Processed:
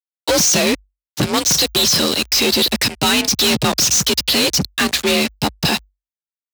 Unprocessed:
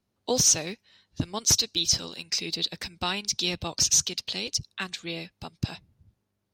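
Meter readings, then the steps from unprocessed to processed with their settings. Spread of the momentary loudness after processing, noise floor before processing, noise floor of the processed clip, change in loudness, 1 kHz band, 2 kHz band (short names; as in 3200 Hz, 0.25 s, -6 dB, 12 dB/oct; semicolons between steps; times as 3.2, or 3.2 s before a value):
6 LU, -79 dBFS, under -85 dBFS, +10.5 dB, +14.5 dB, +16.0 dB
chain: fuzz box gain 45 dB, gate -47 dBFS; frequency shift +48 Hz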